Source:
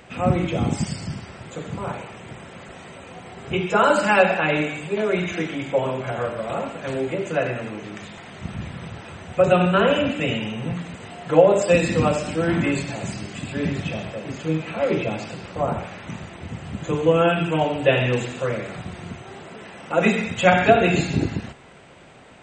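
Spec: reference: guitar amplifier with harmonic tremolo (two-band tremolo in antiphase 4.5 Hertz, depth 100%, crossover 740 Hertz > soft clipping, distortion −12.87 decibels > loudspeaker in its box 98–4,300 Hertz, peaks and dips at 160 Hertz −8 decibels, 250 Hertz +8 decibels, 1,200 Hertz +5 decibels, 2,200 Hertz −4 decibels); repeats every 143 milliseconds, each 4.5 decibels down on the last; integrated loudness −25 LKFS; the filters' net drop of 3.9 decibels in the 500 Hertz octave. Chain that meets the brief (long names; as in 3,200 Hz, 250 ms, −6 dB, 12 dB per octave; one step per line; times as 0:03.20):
parametric band 500 Hz −5 dB
repeating echo 143 ms, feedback 60%, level −4.5 dB
two-band tremolo in antiphase 4.5 Hz, depth 100%, crossover 740 Hz
soft clipping −20 dBFS
loudspeaker in its box 98–4,300 Hz, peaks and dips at 160 Hz −8 dB, 250 Hz +8 dB, 1,200 Hz +5 dB, 2,200 Hz −4 dB
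level +4.5 dB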